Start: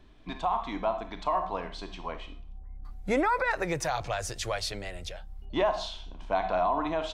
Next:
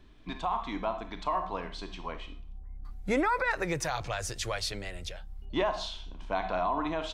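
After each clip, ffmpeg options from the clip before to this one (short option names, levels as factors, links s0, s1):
-af "equalizer=f=690:w=1.7:g=-4.5"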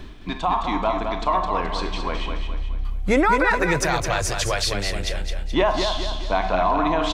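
-af "areverse,acompressor=mode=upward:threshold=0.0282:ratio=2.5,areverse,aecho=1:1:213|426|639|852|1065:0.501|0.216|0.0927|0.0398|0.0171,volume=2.82"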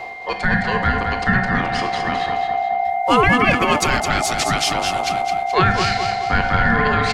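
-af "aeval=exprs='val(0)*sin(2*PI*1000*n/s)':c=same,afreqshift=-260,aeval=exprs='val(0)+0.0112*sin(2*PI*2100*n/s)':c=same,volume=2.11"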